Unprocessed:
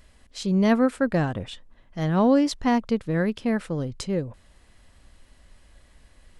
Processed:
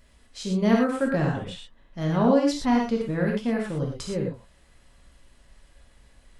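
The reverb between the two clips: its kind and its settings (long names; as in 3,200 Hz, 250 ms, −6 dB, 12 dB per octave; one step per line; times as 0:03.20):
reverb whose tail is shaped and stops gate 140 ms flat, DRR −1.5 dB
level −4.5 dB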